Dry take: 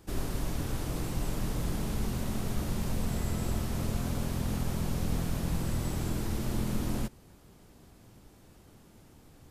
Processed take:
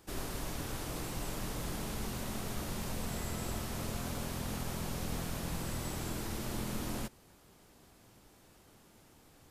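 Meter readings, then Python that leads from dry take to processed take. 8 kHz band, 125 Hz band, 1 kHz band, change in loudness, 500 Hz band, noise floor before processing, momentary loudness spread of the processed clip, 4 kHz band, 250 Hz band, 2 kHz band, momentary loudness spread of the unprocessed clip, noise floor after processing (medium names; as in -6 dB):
0.0 dB, -8.0 dB, -1.0 dB, -5.0 dB, -3.0 dB, -57 dBFS, 1 LU, 0.0 dB, -6.5 dB, -0.5 dB, 2 LU, -62 dBFS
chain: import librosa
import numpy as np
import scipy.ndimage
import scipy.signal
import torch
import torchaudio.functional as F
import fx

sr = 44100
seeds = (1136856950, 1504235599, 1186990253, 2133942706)

y = fx.low_shelf(x, sr, hz=350.0, db=-9.0)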